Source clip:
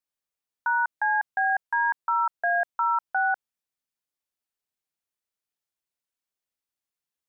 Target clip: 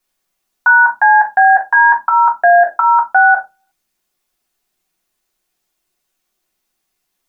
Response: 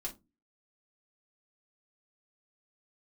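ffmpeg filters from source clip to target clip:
-filter_complex "[1:a]atrim=start_sample=2205[link_01];[0:a][link_01]afir=irnorm=-1:irlink=0,alimiter=level_in=20dB:limit=-1dB:release=50:level=0:latency=1,volume=-1dB"

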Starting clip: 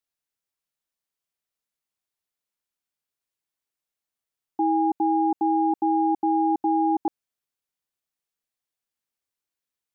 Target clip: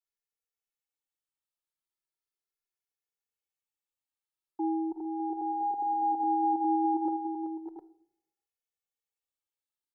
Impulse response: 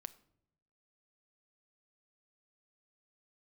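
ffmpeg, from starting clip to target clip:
-filter_complex "[0:a]aecho=1:1:2.3:0.77,aecho=1:1:44|381|605|708:0.299|0.355|0.355|0.447[link_01];[1:a]atrim=start_sample=2205[link_02];[link_01][link_02]afir=irnorm=-1:irlink=0,asplit=2[link_03][link_04];[link_04]adelay=2.4,afreqshift=0.37[link_05];[link_03][link_05]amix=inputs=2:normalize=1,volume=-4.5dB"

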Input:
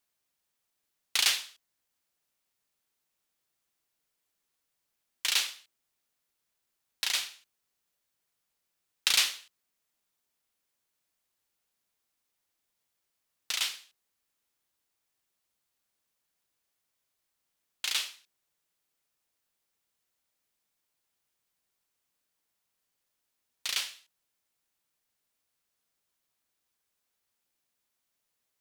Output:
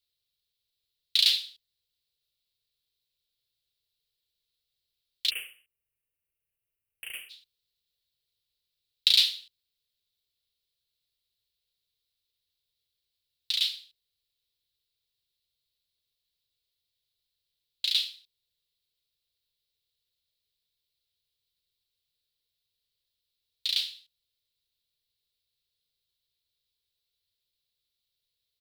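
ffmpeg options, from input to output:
ffmpeg -i in.wav -filter_complex "[0:a]asplit=3[link_01][link_02][link_03];[link_01]afade=type=out:start_time=5.29:duration=0.02[link_04];[link_02]asuperstop=centerf=5100:order=20:qfactor=0.91,afade=type=in:start_time=5.29:duration=0.02,afade=type=out:start_time=7.29:duration=0.02[link_05];[link_03]afade=type=in:start_time=7.29:duration=0.02[link_06];[link_04][link_05][link_06]amix=inputs=3:normalize=0,crystalizer=i=5:c=0,firequalizer=gain_entry='entry(100,0);entry(250,-21);entry(450,-8);entry(830,-28);entry(3900,-4);entry(6200,-28)':delay=0.05:min_phase=1,volume=4dB" out.wav

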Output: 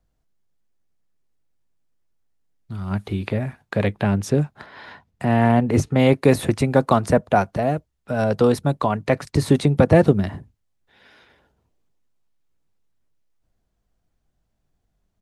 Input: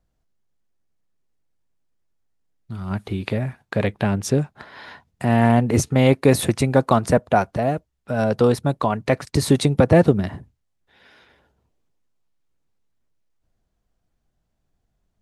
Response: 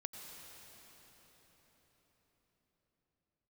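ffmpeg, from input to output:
-filter_complex "[0:a]asettb=1/sr,asplit=3[link_01][link_02][link_03];[link_01]atrim=end=4.664[link_04];[link_02]atrim=start=4.66:end=6,asetpts=PTS-STARTPTS,afade=type=in:duration=0.004:curve=qsin,afade=type=out:start_time=1.336:duration=0.004:curve=qsin,highshelf=frequency=5100:gain=-7[link_05];[link_03]atrim=start=5.996[link_06];[link_04][link_05]acrossfade=duration=0.004:curve1=hsin:curve2=qsin[link_07];[link_07][link_06]acrossfade=duration=0.004:curve1=qsin:curve2=hsin,acrossover=split=300|2700[link_08][link_09][link_10];[link_08]asplit=2[link_11][link_12];[link_12]adelay=20,volume=-10.5dB[link_13];[link_11][link_13]amix=inputs=2:normalize=0[link_14];[link_10]alimiter=limit=-23.5dB:level=0:latency=1:release=162[link_15];[link_14][link_09][link_15]amix=inputs=3:normalize=0"

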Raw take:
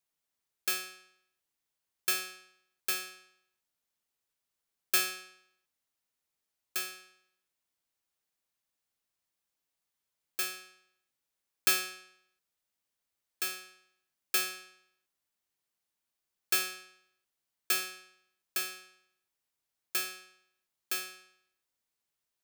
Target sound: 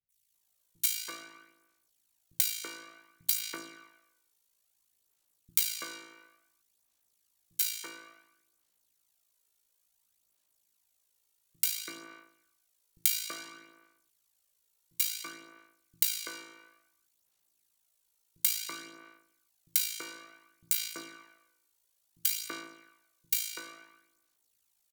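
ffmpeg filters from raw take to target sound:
ffmpeg -i in.wav -filter_complex "[0:a]adynamicequalizer=threshold=0.00282:dfrequency=5300:dqfactor=2.6:tfrequency=5300:tqfactor=2.6:attack=5:release=100:ratio=0.375:range=2.5:mode=boostabove:tftype=bell,asplit=2[link_01][link_02];[link_02]asetrate=35002,aresample=44100,atempo=1.25992,volume=-14dB[link_03];[link_01][link_03]amix=inputs=2:normalize=0,tremolo=f=61:d=0.71,acrossover=split=450|3800[link_04][link_05][link_06];[link_04]acompressor=threshold=-54dB:ratio=4[link_07];[link_05]acompressor=threshold=-48dB:ratio=4[link_08];[link_06]acompressor=threshold=-42dB:ratio=4[link_09];[link_07][link_08][link_09]amix=inputs=3:normalize=0,highshelf=frequency=4200:gain=10,bandreject=frequency=5600:width=15,acrossover=split=170|2100[link_10][link_11][link_12];[link_12]adelay=80[link_13];[link_11]adelay=300[link_14];[link_10][link_14][link_13]amix=inputs=3:normalize=0,aphaser=in_gain=1:out_gain=1:delay=2:decay=0.42:speed=0.64:type=sinusoidal,asetrate=39690,aresample=44100,volume=5dB" out.wav

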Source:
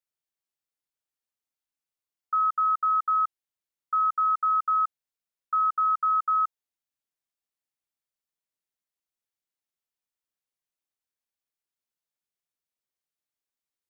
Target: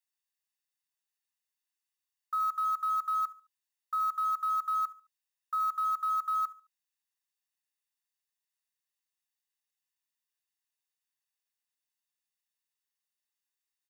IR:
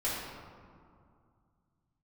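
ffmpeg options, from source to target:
-af "acontrast=49,highpass=1300,aecho=1:1:1.1:0.6,aecho=1:1:71|142|213:0.112|0.0393|0.0137,acrusher=bits=6:mode=log:mix=0:aa=0.000001,volume=-5.5dB"

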